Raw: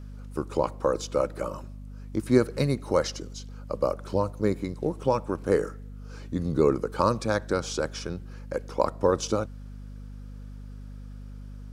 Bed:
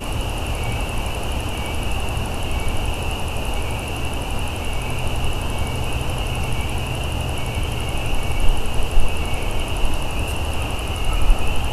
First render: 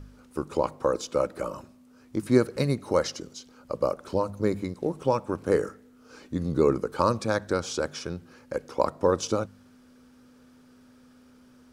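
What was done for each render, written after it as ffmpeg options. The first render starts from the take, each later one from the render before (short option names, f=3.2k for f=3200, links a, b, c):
-af "bandreject=f=50:t=h:w=4,bandreject=f=100:t=h:w=4,bandreject=f=150:t=h:w=4,bandreject=f=200:t=h:w=4"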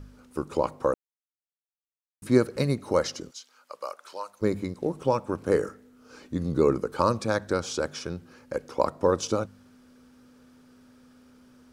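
-filter_complex "[0:a]asplit=3[a][b][c];[a]afade=t=out:st=3.3:d=0.02[d];[b]highpass=1.1k,afade=t=in:st=3.3:d=0.02,afade=t=out:st=4.41:d=0.02[e];[c]afade=t=in:st=4.41:d=0.02[f];[d][e][f]amix=inputs=3:normalize=0,asplit=3[g][h][i];[g]atrim=end=0.94,asetpts=PTS-STARTPTS,afade=t=out:st=0.936:d=0.004:c=hsin[j];[h]atrim=start=0.94:end=2.22,asetpts=PTS-STARTPTS,volume=0[k];[i]atrim=start=2.22,asetpts=PTS-STARTPTS,afade=t=in:d=0.004:c=hsin[l];[j][k][l]concat=n=3:v=0:a=1"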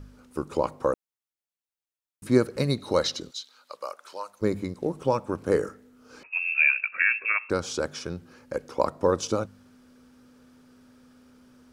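-filter_complex "[0:a]asettb=1/sr,asplit=3[a][b][c];[a]atrim=end=2.704[d];[b]atrim=start=2.7:end=3.77,asetpts=PTS-STARTPTS,afade=t=in:d=0.004:c=qsin,afade=t=out:st=1.066:d=0.004:c=qsin,equalizer=f=3.9k:w=3.9:g=14.5[e];[c]atrim=start=3.766[f];[d][e]acrossfade=d=0.004:c1=hsin:c2=qsin[g];[g][f]acrossfade=d=0.004:c1=qsin:c2=hsin,asettb=1/sr,asplit=3[h][i][j];[h]atrim=end=6.234[k];[i]atrim=start=6.23:end=7.5,asetpts=PTS-STARTPTS,afade=t=in:d=0.004:c=qsin,afade=t=out:st=1.266:d=0.004:c=qsin,lowpass=f=2.4k:t=q:w=0.5098,lowpass=f=2.4k:t=q:w=0.6013,lowpass=f=2.4k:t=q:w=0.9,lowpass=f=2.4k:t=q:w=2.563,afreqshift=-2800[l];[j]atrim=start=7.496[m];[k][l]acrossfade=d=0.004:c1=hsin:c2=qsin[n];[n][m]acrossfade=d=0.004:c1=qsin:c2=hsin"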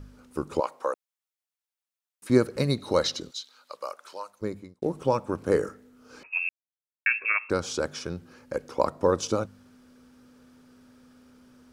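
-filter_complex "[0:a]asettb=1/sr,asplit=3[a][b][c];[a]atrim=end=0.604[d];[b]atrim=start=0.6:end=2.3,asetpts=PTS-STARTPTS,afade=t=in:d=0.004:c=qsin,afade=t=out:st=1.696:d=0.004:c=qsin,highpass=600[e];[c]atrim=start=2.296[f];[d][e]acrossfade=d=0.004:c1=hsin:c2=qsin[g];[g][f]acrossfade=d=0.004:c1=qsin:c2=hsin,asplit=4[h][i][j][k];[h]atrim=end=4.82,asetpts=PTS-STARTPTS,afade=t=out:st=4.06:d=0.76[l];[i]atrim=start=4.82:end=6.49,asetpts=PTS-STARTPTS,afade=t=in:d=0.004:c=hsin,afade=t=out:st=1.666:d=0.004:c=hsin[m];[j]atrim=start=6.49:end=7.06,asetpts=PTS-STARTPTS,volume=0[n];[k]atrim=start=7.06,asetpts=PTS-STARTPTS,afade=t=in:d=0.004:c=hsin[o];[l][m][n][o]concat=n=4:v=0:a=1"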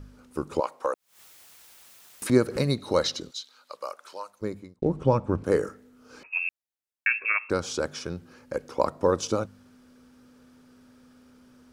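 -filter_complex "[0:a]asettb=1/sr,asplit=3[a][b][c];[a]atrim=end=0.854[d];[b]atrim=start=0.85:end=2.71,asetpts=PTS-STARTPTS,afade=t=in:d=0.004:c=qsin,afade=t=out:st=1.856:d=0.004:c=qsin,acompressor=mode=upward:threshold=-21dB:ratio=2.5:attack=3.2:release=140:knee=2.83:detection=peak[e];[c]atrim=start=2.706[f];[d][e]acrossfade=d=0.004:c1=hsin:c2=qsin[g];[g][f]acrossfade=d=0.004:c1=qsin:c2=hsin,asettb=1/sr,asplit=3[h][i][j];[h]atrim=end=4.764[k];[i]atrim=start=4.76:end=5.44,asetpts=PTS-STARTPTS,afade=t=in:d=0.004:c=qsin,afade=t=out:st=0.676:d=0.004:c=qsin,aemphasis=mode=reproduction:type=bsi[l];[j]atrim=start=5.436[m];[k][l]acrossfade=d=0.004:c1=hsin:c2=qsin[n];[n][m]acrossfade=d=0.004:c1=qsin:c2=hsin"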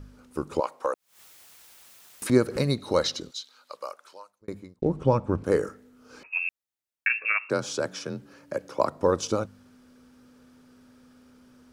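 -filter_complex "[0:a]asplit=3[a][b][c];[a]afade=t=out:st=7.08:d=0.02[d];[b]afreqshift=36,afade=t=in:st=7.08:d=0.02,afade=t=out:st=8.89:d=0.02[e];[c]afade=t=in:st=8.89:d=0.02[f];[d][e][f]amix=inputs=3:normalize=0,asplit=2[g][h];[g]atrim=end=4.48,asetpts=PTS-STARTPTS,afade=t=out:st=3.77:d=0.71[i];[h]atrim=start=4.48,asetpts=PTS-STARTPTS,afade=t=in:d=0.004:c=hsin[j];[i][j]concat=n=2:v=0:a=1"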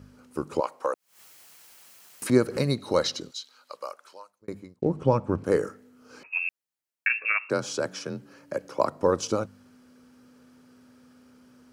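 -af "highpass=84,bandreject=f=3.6k:w=15"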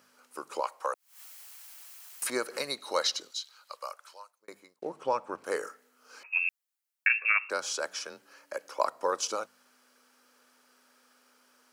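-af "highpass=760,highshelf=f=8.6k:g=5"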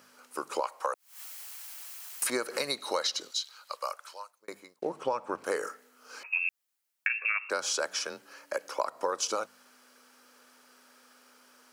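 -filter_complex "[0:a]asplit=2[a][b];[b]alimiter=limit=-19.5dB:level=0:latency=1:release=155,volume=-2dB[c];[a][c]amix=inputs=2:normalize=0,acompressor=threshold=-26dB:ratio=6"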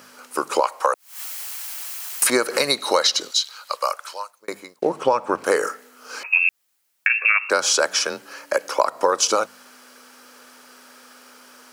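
-af "volume=12dB,alimiter=limit=-3dB:level=0:latency=1"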